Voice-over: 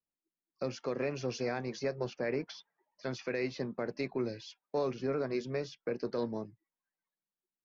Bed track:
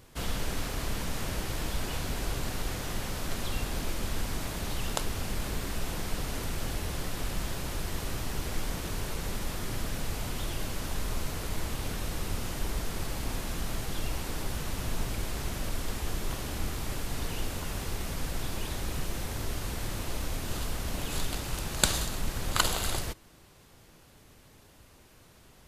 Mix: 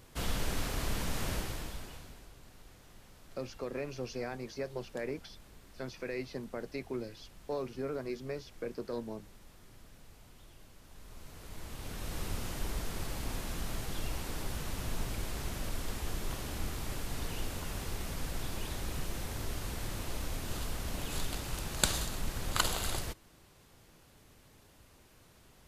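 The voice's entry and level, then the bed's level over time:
2.75 s, -4.0 dB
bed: 1.34 s -1.5 dB
2.31 s -22.5 dB
10.83 s -22.5 dB
12.19 s -4 dB

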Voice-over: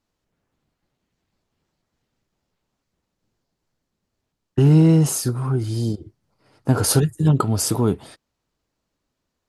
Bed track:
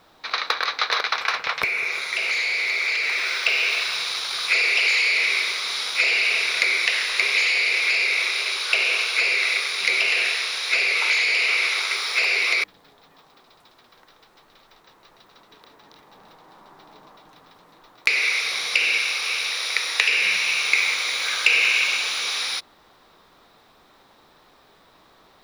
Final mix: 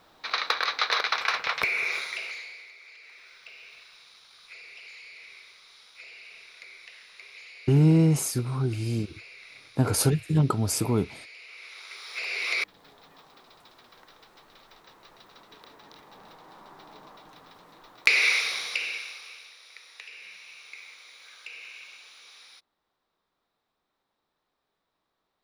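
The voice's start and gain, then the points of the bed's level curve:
3.10 s, -5.5 dB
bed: 1.96 s -3 dB
2.75 s -27 dB
11.48 s -27 dB
12.87 s -0.5 dB
18.31 s -0.5 dB
19.57 s -25.5 dB

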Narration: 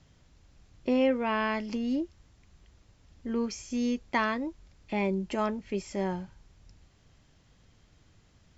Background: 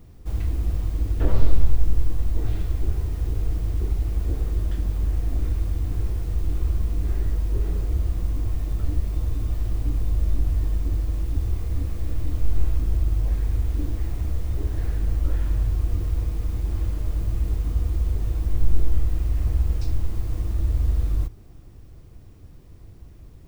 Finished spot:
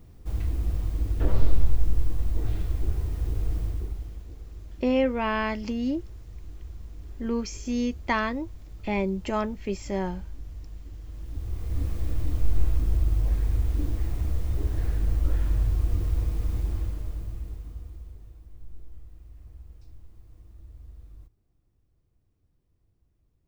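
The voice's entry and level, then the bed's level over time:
3.95 s, +2.0 dB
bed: 3.62 s -3 dB
4.29 s -17.5 dB
10.96 s -17.5 dB
11.84 s -1.5 dB
16.59 s -1.5 dB
18.47 s -24.5 dB

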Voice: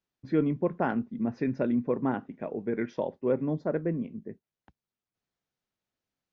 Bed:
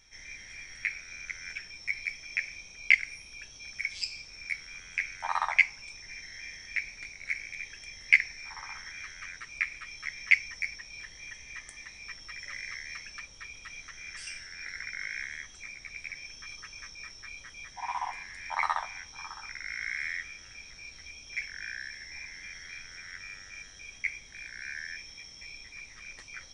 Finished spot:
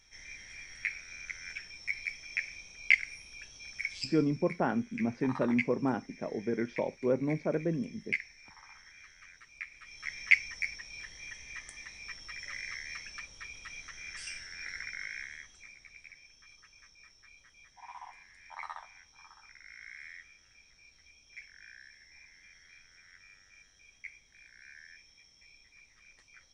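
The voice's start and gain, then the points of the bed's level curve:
3.80 s, -2.0 dB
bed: 3.93 s -2.5 dB
4.58 s -12 dB
9.7 s -12 dB
10.12 s -1 dB
14.73 s -1 dB
16.27 s -13.5 dB

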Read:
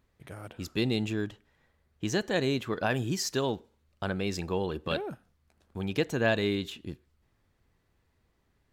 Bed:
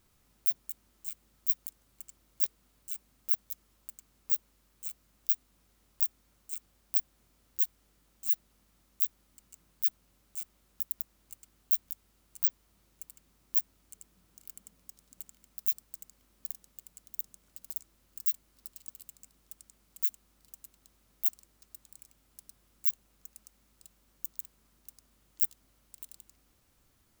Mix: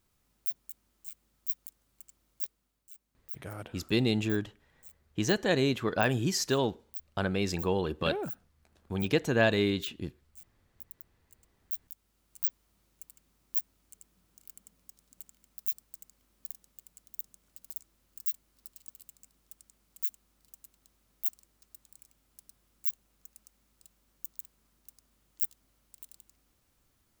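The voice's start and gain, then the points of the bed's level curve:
3.15 s, +1.5 dB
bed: 2.32 s -5 dB
2.82 s -13.5 dB
11.15 s -13.5 dB
12.39 s -3 dB

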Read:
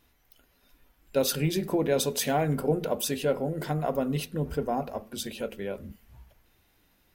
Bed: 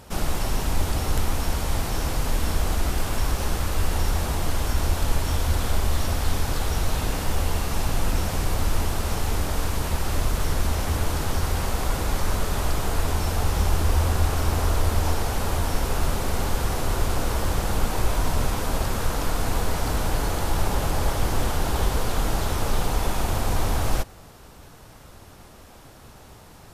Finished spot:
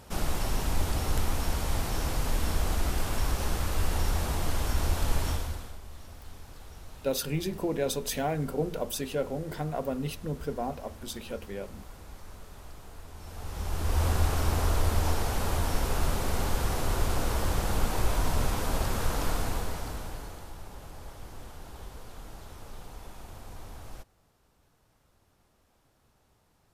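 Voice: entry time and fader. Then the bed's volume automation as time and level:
5.90 s, -4.0 dB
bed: 5.29 s -4.5 dB
5.79 s -22.5 dB
13.11 s -22.5 dB
14.05 s -4 dB
19.32 s -4 dB
20.59 s -21 dB

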